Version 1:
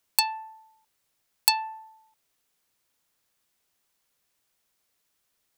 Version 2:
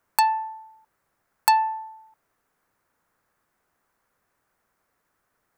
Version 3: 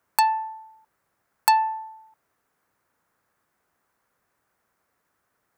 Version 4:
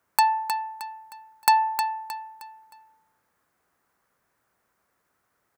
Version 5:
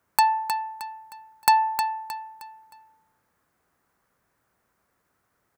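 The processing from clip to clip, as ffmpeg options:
-af "highshelf=f=2.2k:t=q:w=1.5:g=-12.5,volume=8.5dB"
-af "highpass=48"
-af "aecho=1:1:311|622|933|1244:0.422|0.156|0.0577|0.0214"
-af "lowshelf=f=270:g=6"

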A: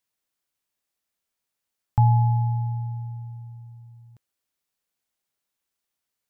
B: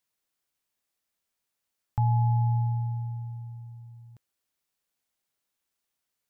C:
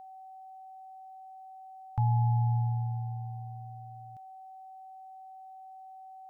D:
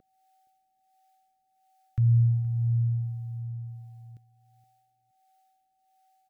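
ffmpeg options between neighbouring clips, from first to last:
-af "alimiter=limit=-17.5dB:level=0:latency=1:release=465"
-af "aeval=exprs='val(0)+0.00708*sin(2*PI*760*n/s)':c=same,volume=-2.5dB"
-filter_complex "[0:a]acrossover=split=400[a][b];[a]aeval=exprs='val(0)*(1-0.7/2+0.7/2*cos(2*PI*1.4*n/s))':c=same[c];[b]aeval=exprs='val(0)*(1-0.7/2-0.7/2*cos(2*PI*1.4*n/s))':c=same[d];[c][d]amix=inputs=2:normalize=0,asuperstop=centerf=860:order=4:qfactor=1,aecho=1:1:470|940:0.106|0.0254,volume=6.5dB"

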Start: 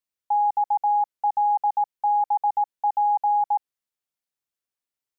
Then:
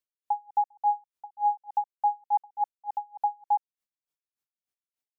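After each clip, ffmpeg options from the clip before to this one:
-af "aeval=exprs='val(0)*pow(10,-37*(0.5-0.5*cos(2*PI*3.4*n/s))/20)':c=same"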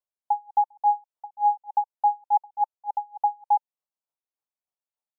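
-af "firequalizer=gain_entry='entry(380,0);entry(590,10);entry(890,11);entry(1700,-3)':delay=0.05:min_phase=1,volume=-7dB"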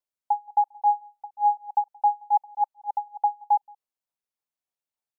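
-filter_complex "[0:a]asplit=2[a][b];[b]adelay=174.9,volume=-28dB,highshelf=f=4k:g=-3.94[c];[a][c]amix=inputs=2:normalize=0"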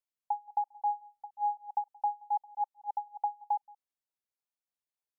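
-af "acompressor=threshold=-22dB:ratio=3,volume=-6dB"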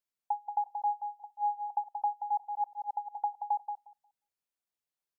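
-filter_complex "[0:a]asplit=2[a][b];[b]adelay=179,lowpass=f=970:p=1,volume=-4dB,asplit=2[c][d];[d]adelay=179,lowpass=f=970:p=1,volume=0.22,asplit=2[e][f];[f]adelay=179,lowpass=f=970:p=1,volume=0.22[g];[a][c][e][g]amix=inputs=4:normalize=0"

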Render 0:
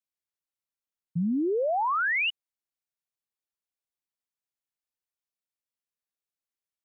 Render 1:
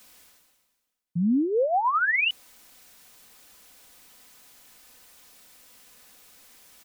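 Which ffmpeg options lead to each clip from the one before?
-af "aecho=1:1:4:0.43,areverse,acompressor=mode=upward:threshold=-27dB:ratio=2.5,areverse,volume=2dB"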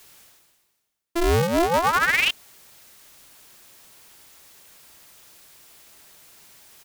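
-af "aeval=exprs='val(0)*sgn(sin(2*PI*170*n/s))':c=same,volume=3dB"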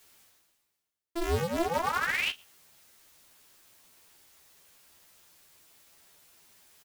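-filter_complex "[0:a]flanger=delay=8.9:depth=5.8:regen=-79:speed=0.31:shape=triangular,asplit=2[a][b];[b]adelay=12,volume=-4.5dB[c];[a][c]amix=inputs=2:normalize=0,volume=-6dB"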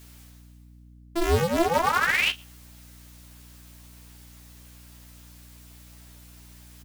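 -af "aeval=exprs='val(0)+0.00178*(sin(2*PI*60*n/s)+sin(2*PI*2*60*n/s)/2+sin(2*PI*3*60*n/s)/3+sin(2*PI*4*60*n/s)/4+sin(2*PI*5*60*n/s)/5)':c=same,volume=6.5dB"

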